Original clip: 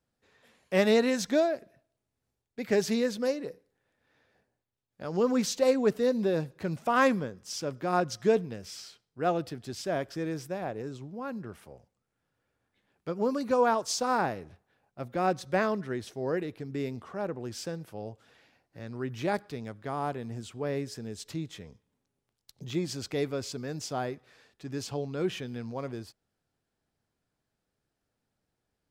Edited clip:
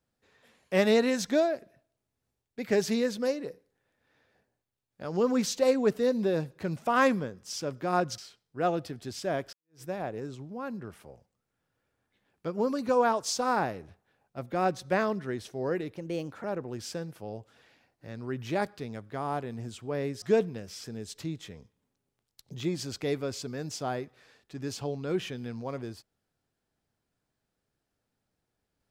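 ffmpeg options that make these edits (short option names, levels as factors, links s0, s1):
-filter_complex "[0:a]asplit=7[s0][s1][s2][s3][s4][s5][s6];[s0]atrim=end=8.182[s7];[s1]atrim=start=8.798:end=10.15,asetpts=PTS-STARTPTS,afade=t=out:st=1.348:d=0.004:c=hsin[s8];[s2]atrim=start=10.15:end=16.584,asetpts=PTS-STARTPTS,afade=t=in:d=0.29:c=exp[s9];[s3]atrim=start=16.58:end=17.16,asetpts=PTS-STARTPTS,asetrate=53361,aresample=44100[s10];[s4]atrim=start=17.156:end=20.942[s11];[s5]atrim=start=8.178:end=8.802[s12];[s6]atrim=start=20.938[s13];[s8][s9]concat=n=2:v=0:a=1[s14];[s7][s14]acrossfade=d=0.004:c1=hsin:c2=hsin[s15];[s15][s10]acrossfade=d=0.004:c1=hsin:c2=hsin[s16];[s16][s11]acrossfade=d=0.004:c1=hsin:c2=hsin[s17];[s17][s12]acrossfade=d=0.004:c1=hsin:c2=hsin[s18];[s18][s13]acrossfade=d=0.004:c1=hsin:c2=hsin"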